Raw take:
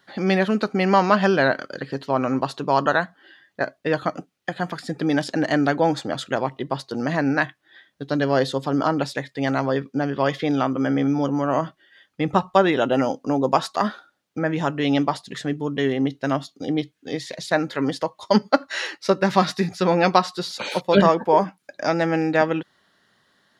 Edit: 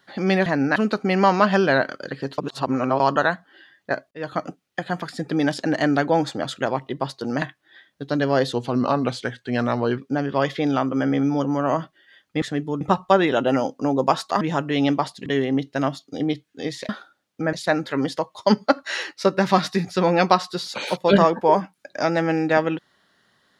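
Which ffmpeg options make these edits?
-filter_complex "[0:a]asplit=15[a][b][c][d][e][f][g][h][i][j][k][l][m][n][o];[a]atrim=end=0.462[p];[b]atrim=start=7.118:end=7.422[q];[c]atrim=start=0.458:end=2.082[r];[d]atrim=start=2.078:end=2.702,asetpts=PTS-STARTPTS,areverse[s];[e]atrim=start=2.698:end=3.81,asetpts=PTS-STARTPTS,afade=t=out:st=1.108:d=0.004:c=hsin[t];[f]atrim=start=3.81:end=7.122,asetpts=PTS-STARTPTS,afade=t=in:d=0.31[u];[g]atrim=start=7.418:end=8.534[v];[h]atrim=start=8.53:end=9.82,asetpts=PTS-STARTPTS,asetrate=39249,aresample=44100,atrim=end_sample=63920,asetpts=PTS-STARTPTS[w];[i]atrim=start=9.816:end=12.262[x];[j]atrim=start=15.348:end=15.742[y];[k]atrim=start=12.258:end=13.862[z];[l]atrim=start=14.498:end=15.352[aa];[m]atrim=start=15.738:end=17.372[ab];[n]atrim=start=13.858:end=14.502[ac];[o]atrim=start=17.368[ad];[p][q]acrossfade=d=0.004:c1=hsin:c2=hsin[ae];[ae][r]acrossfade=d=0.004:c1=hsin:c2=hsin[af];[af][s]acrossfade=d=0.004:c1=hsin:c2=hsin[ag];[t][u]concat=n=2:v=0:a=1[ah];[ag][ah]acrossfade=d=0.004:c1=hsin:c2=hsin[ai];[ai][v]acrossfade=d=0.004:c1=hsin:c2=hsin[aj];[aj][w]acrossfade=d=0.004:c1=hsin:c2=hsin[ak];[ak][x]acrossfade=d=0.004:c1=hsin:c2=hsin[al];[al][y]acrossfade=d=0.004:c1=hsin:c2=hsin[am];[am][z]acrossfade=d=0.004:c1=hsin:c2=hsin[an];[an][aa]acrossfade=d=0.004:c1=hsin:c2=hsin[ao];[ao][ab]acrossfade=d=0.004:c1=hsin:c2=hsin[ap];[ap][ac]acrossfade=d=0.004:c1=hsin:c2=hsin[aq];[aq][ad]acrossfade=d=0.004:c1=hsin:c2=hsin"

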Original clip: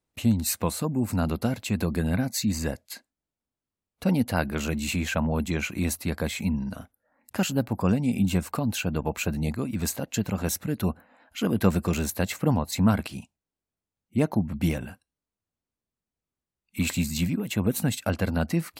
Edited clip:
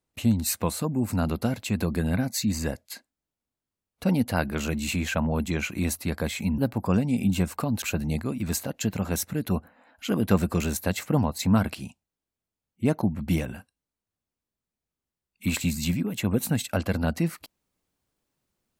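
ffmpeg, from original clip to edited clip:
-filter_complex "[0:a]asplit=3[a][b][c];[a]atrim=end=6.582[d];[b]atrim=start=7.528:end=8.772[e];[c]atrim=start=9.148[f];[d][e]acrossfade=d=0.004:c1=hsin:c2=hsin[g];[g][f]acrossfade=d=0.004:c1=hsin:c2=hsin"

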